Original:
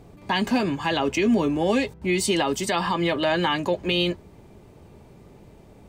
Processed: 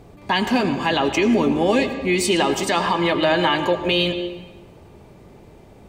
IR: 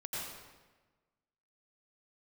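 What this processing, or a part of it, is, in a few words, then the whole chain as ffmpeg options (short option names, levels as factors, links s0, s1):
filtered reverb send: -filter_complex "[0:a]asplit=2[s0][s1];[s1]highpass=f=170:w=0.5412,highpass=f=170:w=1.3066,lowpass=6000[s2];[1:a]atrim=start_sample=2205[s3];[s2][s3]afir=irnorm=-1:irlink=0,volume=0.398[s4];[s0][s4]amix=inputs=2:normalize=0,volume=1.33"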